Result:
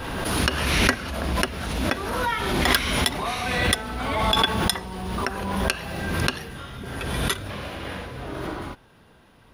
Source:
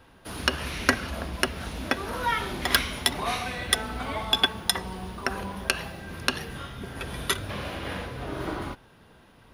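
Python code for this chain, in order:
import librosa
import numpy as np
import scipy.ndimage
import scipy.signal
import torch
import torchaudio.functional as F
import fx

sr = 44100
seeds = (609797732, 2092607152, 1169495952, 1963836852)

y = fx.pre_swell(x, sr, db_per_s=28.0)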